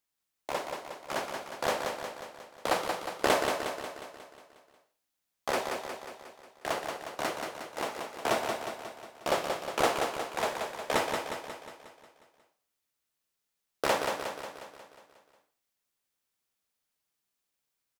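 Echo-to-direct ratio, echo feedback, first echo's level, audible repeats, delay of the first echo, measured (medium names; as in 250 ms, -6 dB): -3.5 dB, 57%, -5.0 dB, 7, 180 ms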